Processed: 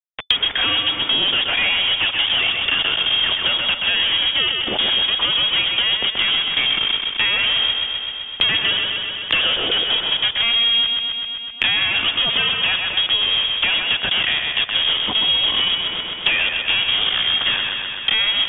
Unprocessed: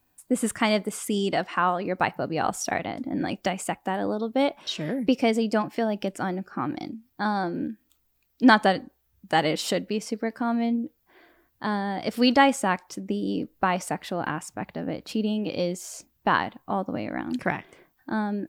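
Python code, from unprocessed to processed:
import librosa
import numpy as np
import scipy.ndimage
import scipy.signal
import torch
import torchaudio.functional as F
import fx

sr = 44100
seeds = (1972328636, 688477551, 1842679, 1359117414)

p1 = fx.fuzz(x, sr, gain_db=44.0, gate_db=-39.0)
p2 = fx.freq_invert(p1, sr, carrier_hz=3500)
p3 = p2 + fx.echo_feedback(p2, sr, ms=128, feedback_pct=49, wet_db=-5.5, dry=0)
p4 = fx.band_squash(p3, sr, depth_pct=100)
y = F.gain(torch.from_numpy(p4), -4.5).numpy()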